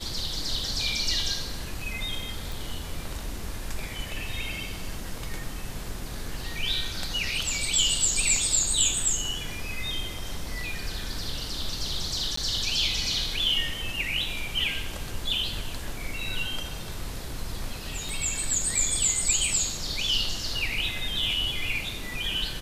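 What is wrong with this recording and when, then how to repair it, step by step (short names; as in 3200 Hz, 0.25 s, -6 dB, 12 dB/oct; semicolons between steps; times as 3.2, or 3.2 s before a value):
2.52 pop
12.36–12.37 gap 14 ms
18.09 pop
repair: de-click; interpolate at 12.36, 14 ms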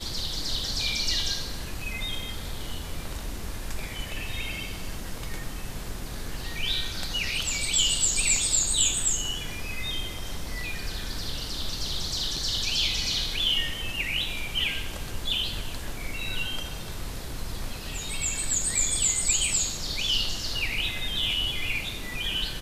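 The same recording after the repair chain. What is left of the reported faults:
18.09 pop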